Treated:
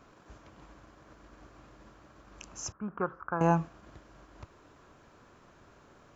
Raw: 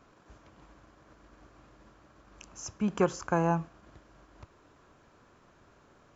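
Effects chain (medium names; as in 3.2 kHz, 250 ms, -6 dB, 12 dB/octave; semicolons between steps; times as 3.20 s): 2.72–3.41 s: four-pole ladder low-pass 1.5 kHz, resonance 65%; trim +2.5 dB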